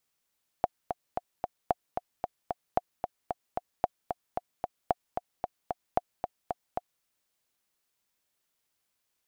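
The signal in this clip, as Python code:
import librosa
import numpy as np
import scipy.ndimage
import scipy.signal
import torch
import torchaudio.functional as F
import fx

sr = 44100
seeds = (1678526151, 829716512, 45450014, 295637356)

y = fx.click_track(sr, bpm=225, beats=4, bars=6, hz=720.0, accent_db=6.5, level_db=-10.5)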